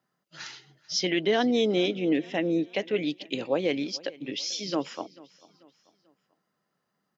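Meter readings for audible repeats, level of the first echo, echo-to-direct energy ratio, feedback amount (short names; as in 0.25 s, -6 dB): 2, -22.0 dB, -21.0 dB, 42%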